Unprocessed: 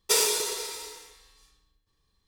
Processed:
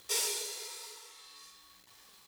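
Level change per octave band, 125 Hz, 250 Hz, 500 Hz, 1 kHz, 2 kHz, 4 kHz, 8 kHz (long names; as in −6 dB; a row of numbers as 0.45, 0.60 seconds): can't be measured, −13.5 dB, −13.0 dB, −11.5 dB, −8.5 dB, −8.0 dB, −8.0 dB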